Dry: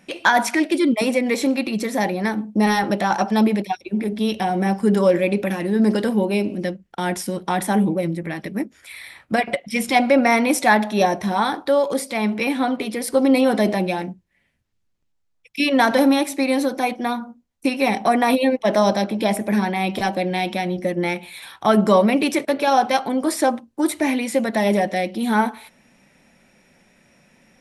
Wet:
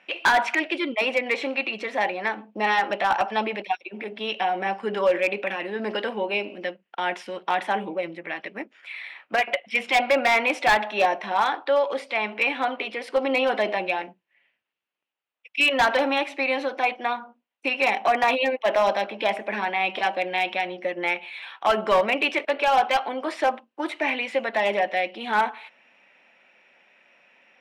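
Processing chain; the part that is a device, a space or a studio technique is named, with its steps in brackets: megaphone (BPF 590–2600 Hz; bell 2800 Hz +9.5 dB 0.53 oct; hard clip -13.5 dBFS, distortion -15 dB)

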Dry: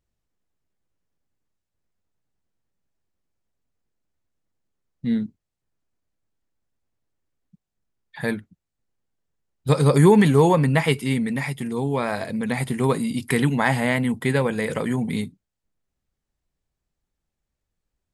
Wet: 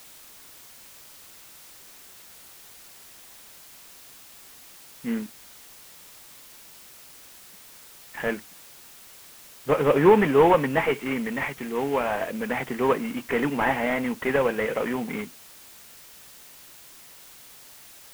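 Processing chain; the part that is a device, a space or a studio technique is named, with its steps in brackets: army field radio (BPF 360–3000 Hz; CVSD 16 kbps; white noise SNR 20 dB); gain +3 dB

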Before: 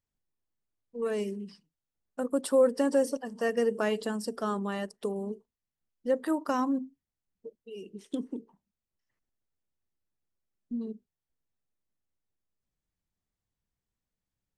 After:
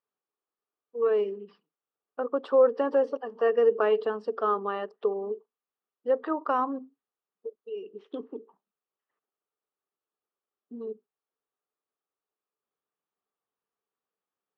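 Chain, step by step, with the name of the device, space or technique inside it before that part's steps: phone earpiece (speaker cabinet 370–3200 Hz, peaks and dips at 430 Hz +10 dB, 780 Hz +4 dB, 1200 Hz +10 dB, 2100 Hz -6 dB)

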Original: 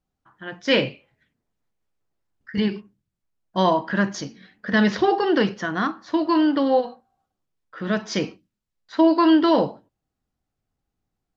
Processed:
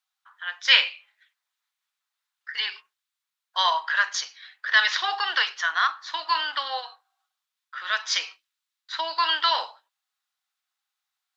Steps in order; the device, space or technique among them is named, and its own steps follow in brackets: 8.08–9.29 dynamic EQ 1400 Hz, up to -4 dB, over -32 dBFS, Q 0.78; headphones lying on a table (HPF 1100 Hz 24 dB/oct; bell 3700 Hz +6 dB 0.45 oct); gain +5 dB

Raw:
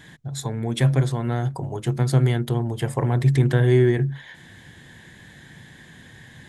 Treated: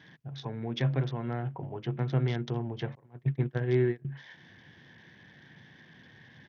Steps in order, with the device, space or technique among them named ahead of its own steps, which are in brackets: 2.95–4.05 gate -16 dBFS, range -30 dB; dynamic EQ 3900 Hz, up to +7 dB, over -56 dBFS, Q 5.7; Bluetooth headset (HPF 110 Hz 12 dB/oct; downsampling 8000 Hz; gain -8 dB; SBC 64 kbps 48000 Hz)

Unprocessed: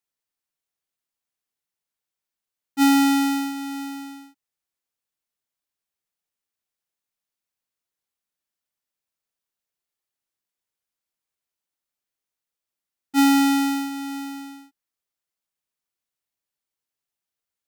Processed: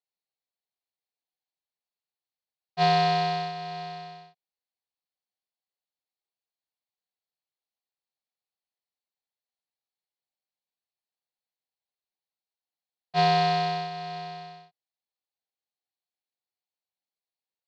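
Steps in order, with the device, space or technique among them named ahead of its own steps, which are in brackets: ring modulator pedal into a guitar cabinet (polarity switched at an audio rate 440 Hz; speaker cabinet 110–4500 Hz, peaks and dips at 270 Hz -6 dB, 510 Hz +4 dB, 770 Hz +9 dB, 1400 Hz -7 dB, 4300 Hz +10 dB); gain -8.5 dB

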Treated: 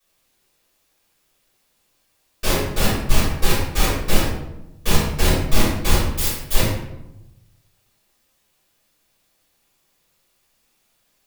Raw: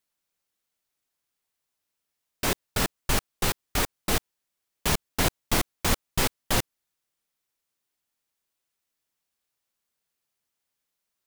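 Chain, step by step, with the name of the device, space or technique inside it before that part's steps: 6.05–6.54 pre-emphasis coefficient 0.8; notch 710 Hz, Q 12; open-reel tape (soft clip -23.5 dBFS, distortion -10 dB; bell 91 Hz +4 dB; white noise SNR 39 dB); tape echo 91 ms, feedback 59%, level -12 dB, low-pass 1800 Hz; shoebox room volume 180 m³, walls mixed, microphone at 5.7 m; gain -5 dB

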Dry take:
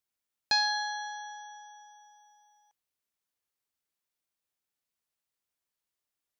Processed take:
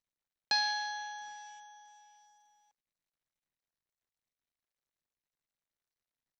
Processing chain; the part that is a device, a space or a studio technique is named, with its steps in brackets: Bluetooth headset (HPF 100 Hz 24 dB/oct; downsampling 16000 Hz; gain -3.5 dB; SBC 64 kbps 32000 Hz)

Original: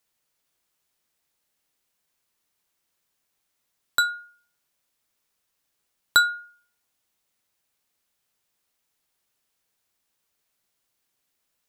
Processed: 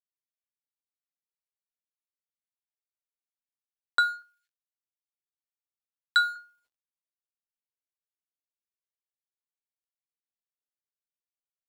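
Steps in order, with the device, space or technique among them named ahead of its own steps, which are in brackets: phone line with mismatched companding (BPF 370–3300 Hz; G.711 law mismatch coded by A); 4.22–6.36 elliptic high-pass 1500 Hz

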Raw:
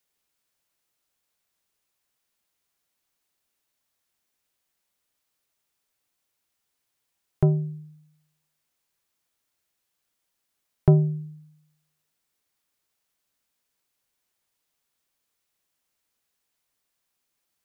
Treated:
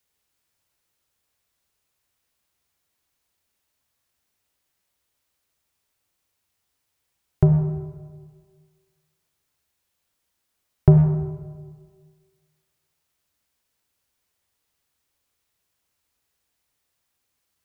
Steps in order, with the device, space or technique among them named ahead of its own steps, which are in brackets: saturated reverb return (on a send at -4 dB: reverb RT60 1.7 s, pre-delay 29 ms + soft clip -22 dBFS, distortion -9 dB); on the sum: bell 73 Hz +10.5 dB 1.1 oct; gain +1.5 dB

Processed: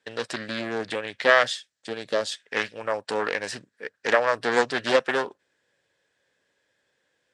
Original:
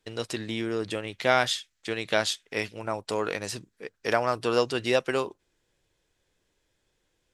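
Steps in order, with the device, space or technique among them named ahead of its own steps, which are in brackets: full-range speaker at full volume (Doppler distortion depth 0.51 ms; speaker cabinet 170–9000 Hz, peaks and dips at 180 Hz -3 dB, 340 Hz -6 dB, 550 Hz +5 dB, 1700 Hz +10 dB, 6500 Hz -4 dB); 1.42–2.31 bell 1900 Hz -7 dB -> -15 dB 1.7 oct; gain +1.5 dB

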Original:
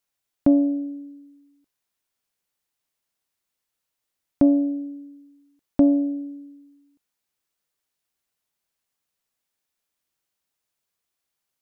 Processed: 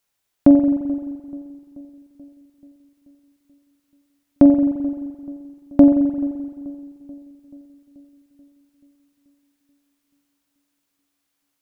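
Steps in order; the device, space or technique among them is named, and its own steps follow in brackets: dub delay into a spring reverb (darkening echo 0.433 s, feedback 62%, low-pass 1100 Hz, level -21 dB; spring tank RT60 1.9 s, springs 43 ms, chirp 65 ms, DRR 6 dB); gain +6 dB

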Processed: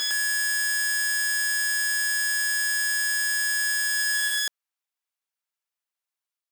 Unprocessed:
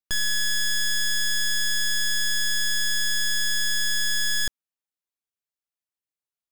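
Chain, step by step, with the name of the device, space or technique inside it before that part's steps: ghost voice (reverse; reverb RT60 2.5 s, pre-delay 86 ms, DRR -3.5 dB; reverse; HPF 700 Hz 12 dB/oct)

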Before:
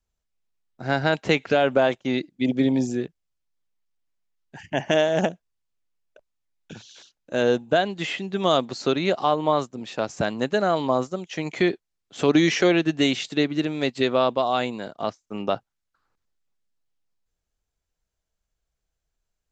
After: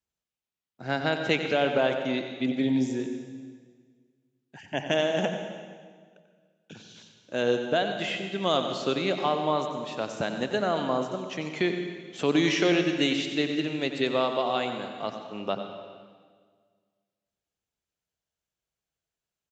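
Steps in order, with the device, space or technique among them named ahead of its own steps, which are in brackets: PA in a hall (HPF 100 Hz; bell 2900 Hz +3.5 dB 0.76 oct; echo 91 ms -11 dB; reverb RT60 1.7 s, pre-delay 0.103 s, DRR 7.5 dB); gain -5.5 dB

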